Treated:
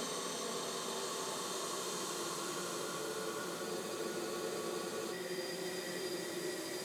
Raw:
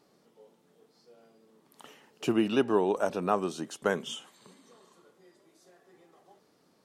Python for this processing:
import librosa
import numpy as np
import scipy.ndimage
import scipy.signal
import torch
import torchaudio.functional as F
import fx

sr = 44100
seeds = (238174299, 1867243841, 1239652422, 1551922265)

y = fx.paulstretch(x, sr, seeds[0], factor=10.0, window_s=0.5, from_s=4.73)
y = fx.rider(y, sr, range_db=10, speed_s=0.5)
y = fx.high_shelf(y, sr, hz=2300.0, db=8.5)
y = fx.spec_freeze(y, sr, seeds[1], at_s=3.65, hold_s=1.46)
y = y * librosa.db_to_amplitude(17.5)